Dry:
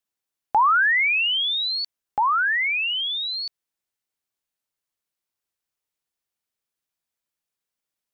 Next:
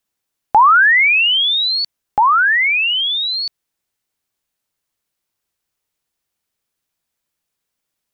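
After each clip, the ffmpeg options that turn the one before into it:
ffmpeg -i in.wav -af "lowshelf=frequency=240:gain=4,volume=8dB" out.wav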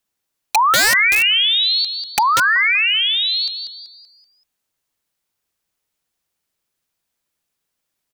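ffmpeg -i in.wav -filter_complex "[0:a]acompressor=threshold=-14dB:ratio=3,asplit=6[link_01][link_02][link_03][link_04][link_05][link_06];[link_02]adelay=191,afreqshift=120,volume=-8dB[link_07];[link_03]adelay=382,afreqshift=240,volume=-16dB[link_08];[link_04]adelay=573,afreqshift=360,volume=-23.9dB[link_09];[link_05]adelay=764,afreqshift=480,volume=-31.9dB[link_10];[link_06]adelay=955,afreqshift=600,volume=-39.8dB[link_11];[link_01][link_07][link_08][link_09][link_10][link_11]amix=inputs=6:normalize=0,aeval=exprs='(mod(2.82*val(0)+1,2)-1)/2.82':channel_layout=same" out.wav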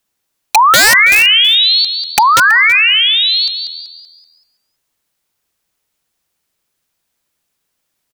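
ffmpeg -i in.wav -af "aecho=1:1:326:0.133,volume=6.5dB" out.wav

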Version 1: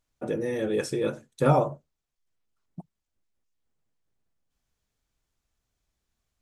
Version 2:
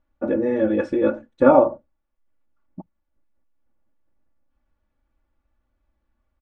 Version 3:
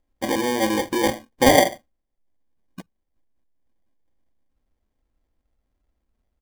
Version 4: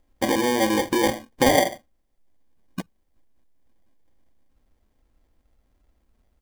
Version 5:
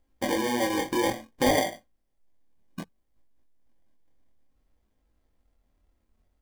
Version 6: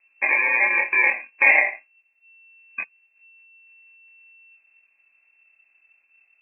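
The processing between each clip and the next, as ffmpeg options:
ffmpeg -i in.wav -af "lowpass=1500,aecho=1:1:3.5:0.96,volume=5.5dB" out.wav
ffmpeg -i in.wav -af "acrusher=samples=33:mix=1:aa=0.000001,volume=-1.5dB" out.wav
ffmpeg -i in.wav -af "acompressor=threshold=-32dB:ratio=2,volume=8dB" out.wav
ffmpeg -i in.wav -af "flanger=delay=18.5:depth=7.5:speed=0.59,volume=-2dB" out.wav
ffmpeg -i in.wav -af "lowpass=frequency=2300:width_type=q:width=0.5098,lowpass=frequency=2300:width_type=q:width=0.6013,lowpass=frequency=2300:width_type=q:width=0.9,lowpass=frequency=2300:width_type=q:width=2.563,afreqshift=-2700,volume=7dB" out.wav

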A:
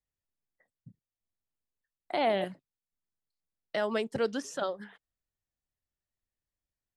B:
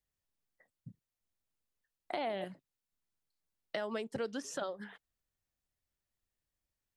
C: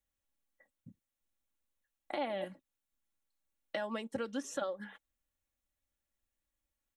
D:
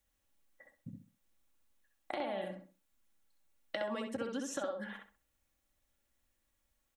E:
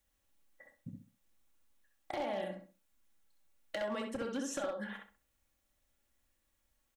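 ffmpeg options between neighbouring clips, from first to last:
ffmpeg -i in.wav -af "acompressor=threshold=-39dB:ratio=3,volume=2dB" out.wav
ffmpeg -i in.wav -af "equalizer=frequency=4800:width=5.9:gain=-10,aecho=1:1:3.6:0.59,volume=-1dB" out.wav
ffmpeg -i in.wav -filter_complex "[0:a]acompressor=threshold=-46dB:ratio=3,asplit=2[link_01][link_02];[link_02]adelay=65,lowpass=frequency=2500:poles=1,volume=-3dB,asplit=2[link_03][link_04];[link_04]adelay=65,lowpass=frequency=2500:poles=1,volume=0.3,asplit=2[link_05][link_06];[link_06]adelay=65,lowpass=frequency=2500:poles=1,volume=0.3,asplit=2[link_07][link_08];[link_08]adelay=65,lowpass=frequency=2500:poles=1,volume=0.3[link_09];[link_03][link_05][link_07][link_09]amix=inputs=4:normalize=0[link_10];[link_01][link_10]amix=inputs=2:normalize=0,volume=7dB" out.wav
ffmpeg -i in.wav -filter_complex "[0:a]asoftclip=type=hard:threshold=-32dB,asplit=2[link_01][link_02];[link_02]adelay=29,volume=-12.5dB[link_03];[link_01][link_03]amix=inputs=2:normalize=0,volume=1dB" out.wav

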